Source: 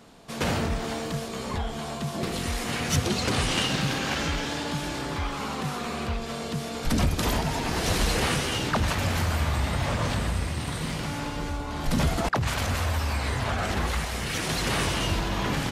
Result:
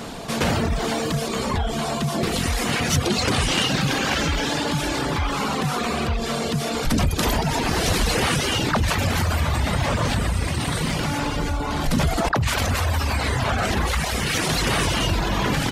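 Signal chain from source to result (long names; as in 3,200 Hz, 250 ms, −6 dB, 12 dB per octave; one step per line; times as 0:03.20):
reverb reduction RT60 0.71 s
on a send at −23.5 dB: convolution reverb, pre-delay 61 ms
on the sum: envelope flattener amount 50%
level +3 dB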